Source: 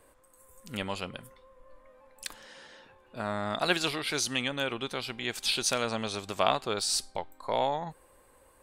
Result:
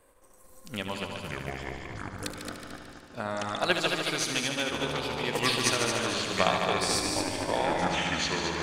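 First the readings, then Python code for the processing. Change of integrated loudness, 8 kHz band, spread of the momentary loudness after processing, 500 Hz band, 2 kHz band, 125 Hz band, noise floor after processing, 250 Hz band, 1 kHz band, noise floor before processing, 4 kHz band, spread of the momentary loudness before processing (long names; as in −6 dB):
+2.0 dB, +2.0 dB, 14 LU, +2.5 dB, +4.5 dB, +5.5 dB, −55 dBFS, +4.0 dB, +2.5 dB, −61 dBFS, +2.5 dB, 15 LU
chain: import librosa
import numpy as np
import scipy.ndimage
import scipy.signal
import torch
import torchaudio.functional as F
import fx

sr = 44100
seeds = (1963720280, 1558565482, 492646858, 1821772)

y = fx.echo_pitch(x, sr, ms=218, semitones=-6, count=2, db_per_echo=-3.0)
y = fx.echo_heads(y, sr, ms=74, heads='all three', feedback_pct=59, wet_db=-8)
y = fx.transient(y, sr, attack_db=4, sustain_db=-2)
y = y * librosa.db_to_amplitude(-2.0)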